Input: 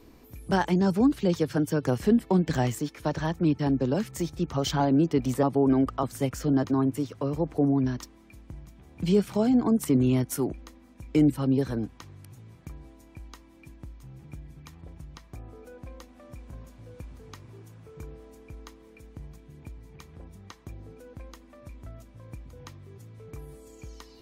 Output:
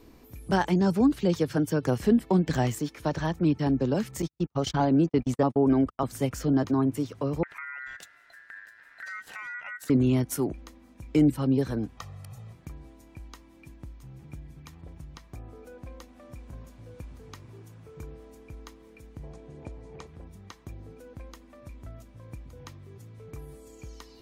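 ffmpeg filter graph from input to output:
ffmpeg -i in.wav -filter_complex "[0:a]asettb=1/sr,asplit=3[link_01][link_02][link_03];[link_01]atrim=end=4.224[link_04];[link_02]atrim=start=4.22:end=6.04,asetpts=PTS-STARTPTS,afade=type=in:duration=0.004:curve=qsin,afade=type=out:start_time=1.816:duration=0.004:curve=qsin,lowpass=11000,agate=range=-48dB:threshold=-30dB:ratio=16:release=100:detection=peak[link_05];[link_03]atrim=start=6.036[link_06];[link_04][link_05]acrossfade=duration=0.004:curve1=hsin:curve2=qsin[link_07];[link_07][link_06]acrossfade=duration=0.004:curve1=qsin:curve2=hsin,asettb=1/sr,asplit=3[link_08][link_09][link_10];[link_08]atrim=end=7.434[link_11];[link_09]atrim=start=7.43:end=9.9,asetpts=PTS-STARTPTS,afade=type=in:duration=0.004:curve=qsin,afade=type=out:start_time=2.466:duration=0.004:curve=qsin,acompressor=threshold=-36dB:ratio=4:attack=3.2:release=140:knee=1:detection=peak,aeval=exprs='val(0)*sin(2*PI*1700*n/s)':channel_layout=same[link_12];[link_10]atrim=start=9.896[link_13];[link_11][link_12]acrossfade=duration=0.004:curve1=hsin:curve2=qsin[link_14];[link_14][link_13]acrossfade=duration=0.004:curve1=qsin:curve2=hsin,asettb=1/sr,asplit=3[link_15][link_16][link_17];[link_15]atrim=end=11.974[link_18];[link_16]atrim=start=11.97:end=12.53,asetpts=PTS-STARTPTS,afade=type=in:duration=0.004:curve=qsin,afade=type=out:start_time=0.556:duration=0.004:curve=qsin,equalizer=frequency=900:width_type=o:width=0.61:gain=9,aecho=1:1:1.6:0.97,atrim=end_sample=24696[link_19];[link_17]atrim=start=12.526[link_20];[link_18][link_19]acrossfade=duration=0.004:curve1=hsin:curve2=qsin[link_21];[link_21][link_20]acrossfade=duration=0.004:curve1=qsin:curve2=hsin,asettb=1/sr,asplit=3[link_22][link_23][link_24];[link_22]atrim=end=19.234[link_25];[link_23]atrim=start=19.23:end=20.07,asetpts=PTS-STARTPTS,afade=type=in:duration=0.004:curve=qsin,afade=type=out:start_time=0.836:duration=0.004:curve=qsin,lowpass=frequency=9100:width=0.5412,lowpass=frequency=9100:width=1.3066,equalizer=frequency=580:width_type=o:width=1.5:gain=12.5[link_26];[link_24]atrim=start=20.066[link_27];[link_25][link_26]acrossfade=duration=0.004:curve1=hsin:curve2=qsin[link_28];[link_28][link_27]acrossfade=duration=0.004:curve1=qsin:curve2=hsin" out.wav

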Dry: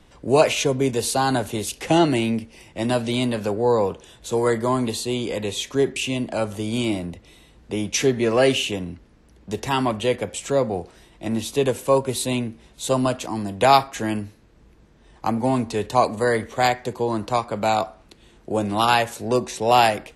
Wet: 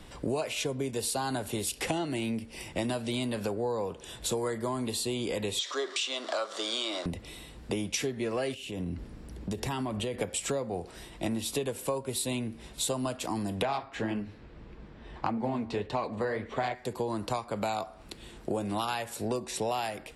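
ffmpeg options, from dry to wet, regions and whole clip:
ffmpeg -i in.wav -filter_complex "[0:a]asettb=1/sr,asplit=3[link_01][link_02][link_03];[link_01]atrim=end=5.594[link_04];[link_02]atrim=start=5.59:end=7.06,asetpts=PTS-STARTPTS,afade=type=in:duration=0.004:curve=qsin,afade=type=out:start_time=1.466:duration=0.004:curve=qsin,aeval=exprs='val(0)+0.5*0.0168*sgn(val(0))':channel_layout=same,highpass=frequency=440:width=0.5412,highpass=frequency=440:width=1.3066,equalizer=frequency=450:width_type=q:width=4:gain=-6,equalizer=frequency=850:width_type=q:width=4:gain=-7,equalizer=frequency=1200:width_type=q:width=4:gain=8,equalizer=frequency=2500:width_type=q:width=4:gain=-8,equalizer=frequency=3700:width_type=q:width=4:gain=7,equalizer=frequency=5900:width_type=q:width=4:gain=3,lowpass=frequency=7000:width=0.5412,lowpass=frequency=7000:width=1.3066[link_05];[link_03]atrim=start=7.056[link_06];[link_04][link_05]acrossfade=duration=0.004:curve1=hsin:curve2=qsin[link_07];[link_07][link_06]acrossfade=duration=0.004:curve1=qsin:curve2=hsin,asettb=1/sr,asplit=3[link_08][link_09][link_10];[link_08]atrim=end=8.544[link_11];[link_09]atrim=start=8.54:end=10.21,asetpts=PTS-STARTPTS,afade=type=in:duration=0.004:curve=qsin,afade=type=out:start_time=1.666:duration=0.004:curve=qsin,lowshelf=frequency=480:gain=6.5,acompressor=threshold=-33dB:ratio=5:attack=3.2:release=140:knee=1:detection=peak[link_12];[link_10]atrim=start=10.206[link_13];[link_11][link_12]acrossfade=duration=0.004:curve1=hsin:curve2=qsin[link_14];[link_14][link_13]acrossfade=duration=0.004:curve1=qsin:curve2=hsin,asettb=1/sr,asplit=3[link_15][link_16][link_17];[link_15]atrim=end=13.624[link_18];[link_16]atrim=start=13.62:end=16.75,asetpts=PTS-STARTPTS,afade=type=in:duration=0.004:curve=qsin,afade=type=out:start_time=3.126:duration=0.004:curve=qsin,lowpass=3400,acontrast=51,flanger=delay=4.5:depth=9.6:regen=-46:speed=1.7:shape=sinusoidal[link_19];[link_17]atrim=start=16.746[link_20];[link_18][link_19]acrossfade=duration=0.004:curve1=hsin:curve2=qsin[link_21];[link_21][link_20]acrossfade=duration=0.004:curve1=qsin:curve2=hsin,highshelf=frequency=5100:gain=4.5,bandreject=frequency=6300:width=8.5,acompressor=threshold=-32dB:ratio=12,volume=3.5dB" out.wav

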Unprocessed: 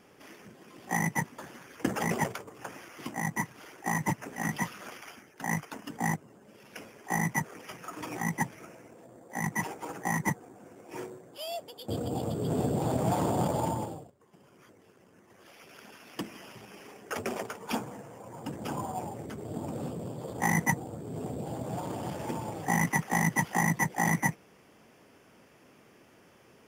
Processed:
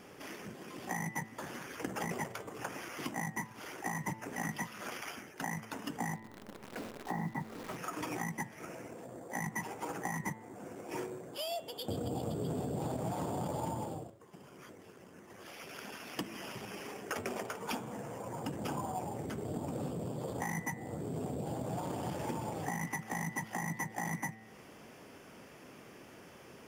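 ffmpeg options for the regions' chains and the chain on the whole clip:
ffmpeg -i in.wav -filter_complex "[0:a]asettb=1/sr,asplit=3[link_01][link_02][link_03];[link_01]atrim=end=6.154[link_04];[link_02]atrim=start=6.15:end=7.76,asetpts=PTS-STARTPTS,afade=type=in:duration=0.004:curve=qsin,afade=type=out:start_time=1.606:duration=0.004:curve=qsin,lowpass=1400,equalizer=frequency=240:width_type=o:width=0.69:gain=4,acrusher=bits=9:dc=4:mix=0:aa=0.000001[link_05];[link_03]atrim=start=7.756[link_06];[link_04][link_05]acrossfade=duration=0.004:curve1=hsin:curve2=qsin[link_07];[link_07][link_06]acrossfade=duration=0.004:curve1=qsin:curve2=hsin,bandreject=frequency=110.5:width_type=h:width=4,bandreject=frequency=221:width_type=h:width=4,bandreject=frequency=331.5:width_type=h:width=4,bandreject=frequency=442:width_type=h:width=4,bandreject=frequency=552.5:width_type=h:width=4,bandreject=frequency=663:width_type=h:width=4,bandreject=frequency=773.5:width_type=h:width=4,bandreject=frequency=884:width_type=h:width=4,bandreject=frequency=994.5:width_type=h:width=4,bandreject=frequency=1105:width_type=h:width=4,bandreject=frequency=1215.5:width_type=h:width=4,bandreject=frequency=1326:width_type=h:width=4,bandreject=frequency=1436.5:width_type=h:width=4,bandreject=frequency=1547:width_type=h:width=4,bandreject=frequency=1657.5:width_type=h:width=4,bandreject=frequency=1768:width_type=h:width=4,bandreject=frequency=1878.5:width_type=h:width=4,bandreject=frequency=1989:width_type=h:width=4,bandreject=frequency=2099.5:width_type=h:width=4,bandreject=frequency=2210:width_type=h:width=4,bandreject=frequency=2320.5:width_type=h:width=4,bandreject=frequency=2431:width_type=h:width=4,bandreject=frequency=2541.5:width_type=h:width=4,bandreject=frequency=2652:width_type=h:width=4,bandreject=frequency=2762.5:width_type=h:width=4,bandreject=frequency=2873:width_type=h:width=4,bandreject=frequency=2983.5:width_type=h:width=4,bandreject=frequency=3094:width_type=h:width=4,bandreject=frequency=3204.5:width_type=h:width=4,bandreject=frequency=3315:width_type=h:width=4,bandreject=frequency=3425.5:width_type=h:width=4,bandreject=frequency=3536:width_type=h:width=4,bandreject=frequency=3646.5:width_type=h:width=4,bandreject=frequency=3757:width_type=h:width=4,bandreject=frequency=3867.5:width_type=h:width=4,bandreject=frequency=3978:width_type=h:width=4,bandreject=frequency=4088.5:width_type=h:width=4,bandreject=frequency=4199:width_type=h:width=4,alimiter=limit=-22.5dB:level=0:latency=1:release=339,acompressor=threshold=-43dB:ratio=2.5,volume=5dB" out.wav

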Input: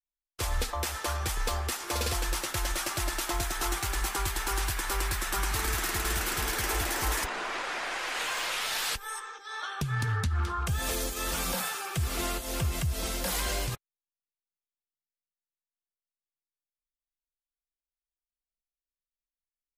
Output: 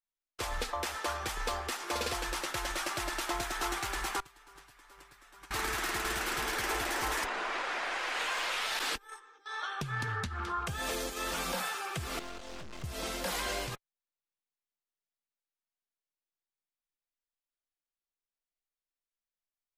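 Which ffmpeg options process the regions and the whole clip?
ffmpeg -i in.wav -filter_complex "[0:a]asettb=1/sr,asplit=3[link_01][link_02][link_03];[link_01]atrim=end=4.204[link_04];[link_02]atrim=start=4.2:end=5.51,asetpts=PTS-STARTPTS,afade=type=in:duration=0.004:curve=qsin,afade=type=out:start_time=1.306:duration=0.004:curve=qsin,agate=range=-24dB:threshold=-26dB:ratio=16:release=100:detection=peak,aecho=1:1:7:0.42,atrim=end_sample=57771,aeval=exprs='val(0)+0.000355*sin(2*PI*1200*n/s)':channel_layout=same[link_05];[link_03]atrim=start=5.506[link_06];[link_04][link_05]acrossfade=duration=0.004:curve1=hsin:curve2=qsin[link_07];[link_07][link_06]acrossfade=duration=0.004:curve1=qsin:curve2=hsin,asettb=1/sr,asplit=3[link_08][link_09][link_10];[link_08]atrim=end=8.794[link_11];[link_09]atrim=start=8.79:end=9.46,asetpts=PTS-STARTPTS,afade=type=in:duration=0.004:curve=qsin,afade=type=out:start_time=0.666:duration=0.004:curve=qsin,agate=range=-15dB:threshold=-36dB:ratio=16:release=100:detection=peak,equalizer=frequency=290:width=1.8:gain=12[link_12];[link_10]atrim=start=9.456[link_13];[link_11][link_12]acrossfade=duration=0.004:curve1=hsin:curve2=qsin[link_14];[link_14][link_13]acrossfade=duration=0.004:curve1=qsin:curve2=hsin,asettb=1/sr,asplit=3[link_15][link_16][link_17];[link_15]atrim=end=12.194[link_18];[link_16]atrim=start=12.19:end=12.84,asetpts=PTS-STARTPTS,afade=type=in:duration=0.004:curve=qsin,afade=type=out:start_time=0.646:duration=0.004:curve=qsin,lowpass=frequency=7100:width=0.5412,lowpass=frequency=7100:width=1.3066,aeval=exprs='(tanh(112*val(0)+0.7)-tanh(0.7))/112':channel_layout=same,asplit=2[link_19][link_20];[link_20]adelay=23,volume=-10.5dB[link_21];[link_19][link_21]amix=inputs=2:normalize=0,atrim=end_sample=28665[link_22];[link_17]atrim=start=12.836[link_23];[link_18][link_22]acrossfade=duration=0.004:curve1=hsin:curve2=qsin[link_24];[link_24][link_23]acrossfade=duration=0.004:curve1=qsin:curve2=hsin,lowpass=frequency=4000:poles=1,equalizer=frequency=65:width=0.52:gain=-13" out.wav

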